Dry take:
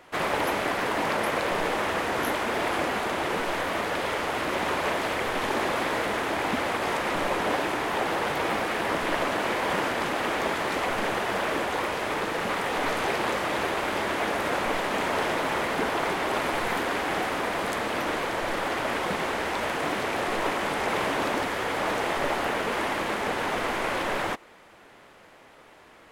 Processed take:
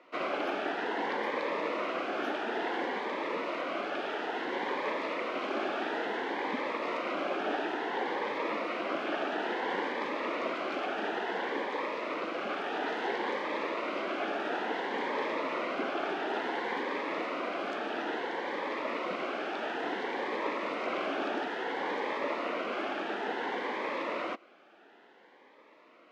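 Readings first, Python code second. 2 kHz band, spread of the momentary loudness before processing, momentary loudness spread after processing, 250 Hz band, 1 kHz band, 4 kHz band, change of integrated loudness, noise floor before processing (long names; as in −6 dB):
−7.5 dB, 2 LU, 2 LU, −5.5 dB, −7.0 dB, −8.5 dB, −6.5 dB, −52 dBFS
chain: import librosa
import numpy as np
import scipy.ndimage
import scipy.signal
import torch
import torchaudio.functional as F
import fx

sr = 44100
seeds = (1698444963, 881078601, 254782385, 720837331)

y = scipy.signal.sosfilt(scipy.signal.butter(4, 250.0, 'highpass', fs=sr, output='sos'), x)
y = fx.air_absorb(y, sr, metres=220.0)
y = fx.notch_cascade(y, sr, direction='rising', hz=0.58)
y = F.gain(torch.from_numpy(y), -2.5).numpy()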